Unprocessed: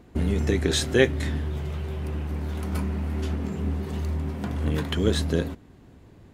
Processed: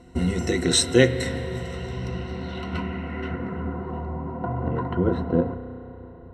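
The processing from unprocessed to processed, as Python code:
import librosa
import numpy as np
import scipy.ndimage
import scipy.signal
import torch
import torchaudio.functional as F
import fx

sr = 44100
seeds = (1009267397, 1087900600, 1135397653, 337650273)

y = fx.ripple_eq(x, sr, per_octave=2.0, db=15)
y = fx.rev_spring(y, sr, rt60_s=3.8, pass_ms=(32,), chirp_ms=70, drr_db=10.5)
y = fx.filter_sweep_lowpass(y, sr, from_hz=8500.0, to_hz=970.0, start_s=1.61, end_s=4.07, q=1.8)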